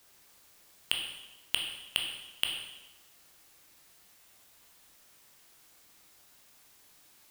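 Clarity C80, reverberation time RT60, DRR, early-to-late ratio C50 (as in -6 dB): 6.5 dB, 1.0 s, 1.0 dB, 4.5 dB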